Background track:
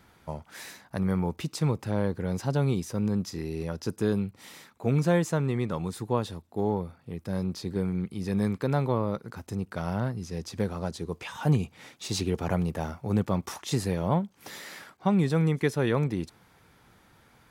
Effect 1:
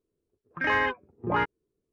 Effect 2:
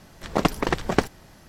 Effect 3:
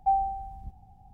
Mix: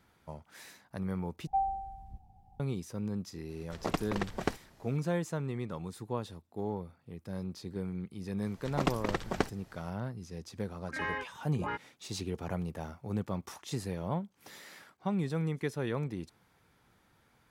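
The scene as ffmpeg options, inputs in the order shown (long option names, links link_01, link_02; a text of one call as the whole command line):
ffmpeg -i bed.wav -i cue0.wav -i cue1.wav -i cue2.wav -filter_complex "[2:a]asplit=2[link_01][link_02];[0:a]volume=-8.5dB,asplit=2[link_03][link_04];[link_03]atrim=end=1.474[link_05];[3:a]atrim=end=1.13,asetpts=PTS-STARTPTS,volume=-6dB[link_06];[link_04]atrim=start=2.596[link_07];[link_01]atrim=end=1.48,asetpts=PTS-STARTPTS,volume=-11.5dB,afade=type=in:duration=0.004:curve=hsin,afade=type=out:start_time=1.476:duration=0.004:curve=hsin,adelay=153909S[link_08];[link_02]atrim=end=1.48,asetpts=PTS-STARTPTS,volume=-9.5dB,afade=type=in:duration=0.004:curve=hsin,afade=type=out:start_time=1.476:duration=0.004:curve=hsin,adelay=371322S[link_09];[1:a]atrim=end=1.92,asetpts=PTS-STARTPTS,volume=-11dB,afade=type=in:duration=0.004:curve=hsin,afade=type=out:start_time=1.916:duration=0.004:curve=hsin,adelay=10320[link_10];[link_05][link_06]acrossfade=duration=0.004:curve1=hsin:curve2=hsin[link_11];[link_11][link_07]acrossfade=duration=0.004:curve1=hsin:curve2=hsin[link_12];[link_12][link_08][link_09][link_10]amix=inputs=4:normalize=0" out.wav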